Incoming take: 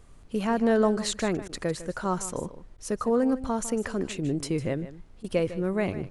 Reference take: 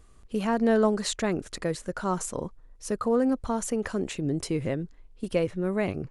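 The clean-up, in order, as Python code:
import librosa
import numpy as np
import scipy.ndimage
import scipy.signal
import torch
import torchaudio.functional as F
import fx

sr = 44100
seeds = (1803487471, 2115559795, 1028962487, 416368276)

y = fx.fix_interpolate(x, sr, at_s=(1.48, 2.77, 5.23), length_ms=11.0)
y = fx.noise_reduce(y, sr, print_start_s=4.84, print_end_s=5.34, reduce_db=6.0)
y = fx.fix_echo_inverse(y, sr, delay_ms=153, level_db=-14.5)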